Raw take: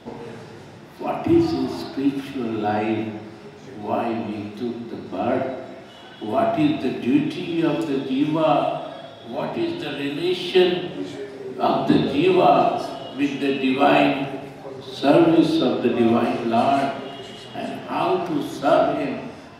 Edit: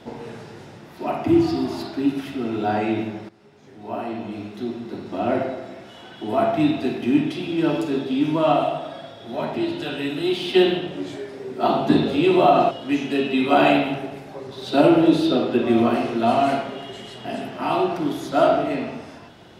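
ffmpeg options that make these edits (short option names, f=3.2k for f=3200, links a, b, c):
-filter_complex "[0:a]asplit=3[a][b][c];[a]atrim=end=3.29,asetpts=PTS-STARTPTS,afade=t=out:st=3.286:d=0.004:c=hsin:silence=0.16788[d];[b]atrim=start=3.29:end=12.712,asetpts=PTS-STARTPTS,afade=t=in:d=1.62:silence=0.16788[e];[c]atrim=start=13.008[f];[d][e]concat=n=2:v=0:a=1[g];[g][f]acrossfade=d=0.004:c1=hsin:c2=hsin"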